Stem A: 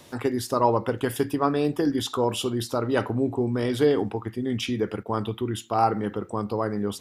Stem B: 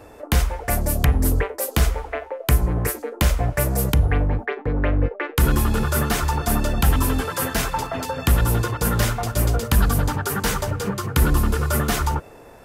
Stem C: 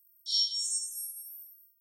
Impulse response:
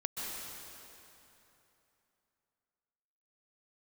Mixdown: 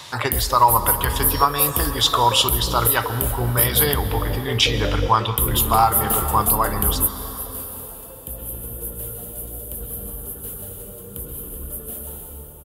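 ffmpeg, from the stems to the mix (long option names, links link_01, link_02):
-filter_complex "[0:a]equalizer=frequency=125:width_type=o:width=1:gain=5,equalizer=frequency=250:width_type=o:width=1:gain=-10,equalizer=frequency=500:width_type=o:width=1:gain=-6,equalizer=frequency=1000:width_type=o:width=1:gain=11,equalizer=frequency=2000:width_type=o:width=1:gain=4,equalizer=frequency=4000:width_type=o:width=1:gain=11,equalizer=frequency=8000:width_type=o:width=1:gain=5,volume=3dB,asplit=3[link_01][link_02][link_03];[link_02]volume=-11.5dB[link_04];[1:a]firequalizer=gain_entry='entry(270,0);entry(500,5);entry(890,-11);entry(2000,-21);entry(3000,-11);entry(5400,-29);entry(9900,-5)':delay=0.05:min_phase=1,crystalizer=i=8:c=0,volume=-4.5dB,asplit=2[link_05][link_06];[link_06]volume=-15.5dB[link_07];[2:a]adelay=1000,volume=-4dB[link_08];[link_03]apad=whole_len=561862[link_09];[link_05][link_09]sidechaingate=range=-33dB:threshold=-36dB:ratio=16:detection=peak[link_10];[3:a]atrim=start_sample=2205[link_11];[link_04][link_07]amix=inputs=2:normalize=0[link_12];[link_12][link_11]afir=irnorm=-1:irlink=0[link_13];[link_01][link_10][link_08][link_13]amix=inputs=4:normalize=0,alimiter=limit=-4dB:level=0:latency=1:release=469"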